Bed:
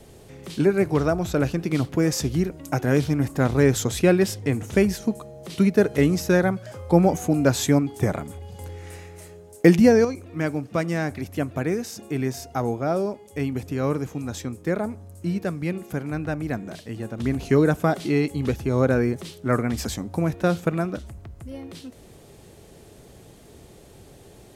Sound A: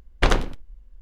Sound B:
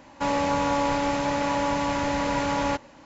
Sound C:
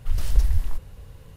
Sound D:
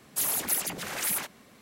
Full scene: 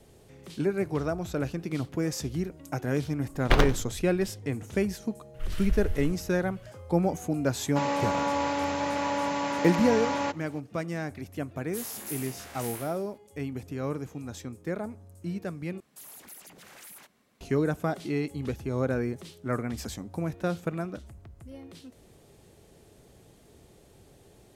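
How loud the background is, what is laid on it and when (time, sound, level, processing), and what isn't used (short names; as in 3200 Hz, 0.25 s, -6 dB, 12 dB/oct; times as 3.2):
bed -8 dB
3.28 add A -2.5 dB + median filter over 5 samples
5.34 add C -9.5 dB + band shelf 2000 Hz +9 dB
7.55 add B -3.5 dB + HPF 180 Hz
11.57 add D -13.5 dB + spectral trails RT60 0.73 s
15.8 replace with D -13 dB + compressor 2:1, threshold -35 dBFS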